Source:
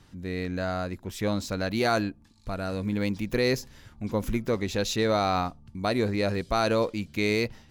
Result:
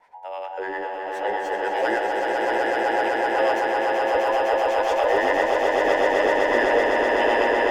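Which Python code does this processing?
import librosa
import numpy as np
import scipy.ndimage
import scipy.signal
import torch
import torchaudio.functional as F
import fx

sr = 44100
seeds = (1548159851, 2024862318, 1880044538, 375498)

y = fx.band_invert(x, sr, width_hz=1000)
y = fx.high_shelf(y, sr, hz=6900.0, db=-7.5)
y = fx.harmonic_tremolo(y, sr, hz=9.9, depth_pct=70, crossover_hz=640.0)
y = fx.graphic_eq_10(y, sr, hz=(125, 500, 2000, 4000), db=(-12, 11, 12, -6))
y = fx.echo_swell(y, sr, ms=127, loudest=8, wet_db=-3.5)
y = F.gain(torch.from_numpy(y), -4.0).numpy()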